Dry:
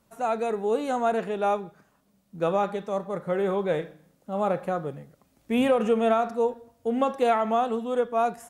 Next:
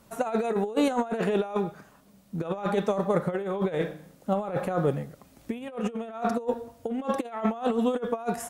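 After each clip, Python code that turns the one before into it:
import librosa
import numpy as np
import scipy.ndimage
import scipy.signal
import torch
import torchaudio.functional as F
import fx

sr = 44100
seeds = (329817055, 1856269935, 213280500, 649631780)

y = fx.over_compress(x, sr, threshold_db=-30.0, ratio=-0.5)
y = F.gain(torch.from_numpy(y), 3.5).numpy()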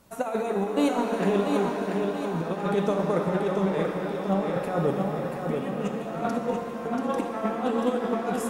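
y = fx.echo_feedback(x, sr, ms=685, feedback_pct=49, wet_db=-5)
y = fx.rev_shimmer(y, sr, seeds[0], rt60_s=3.1, semitones=7, shimmer_db=-8, drr_db=4.0)
y = F.gain(torch.from_numpy(y), -1.0).numpy()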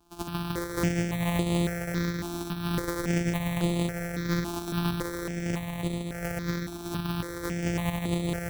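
y = np.r_[np.sort(x[:len(x) // 256 * 256].reshape(-1, 256), axis=1).ravel(), x[len(x) // 256 * 256:]]
y = y + 10.0 ** (-9.0 / 20.0) * np.pad(y, (int(371 * sr / 1000.0), 0))[:len(y)]
y = fx.phaser_held(y, sr, hz=3.6, low_hz=530.0, high_hz=5500.0)
y = F.gain(torch.from_numpy(y), -2.0).numpy()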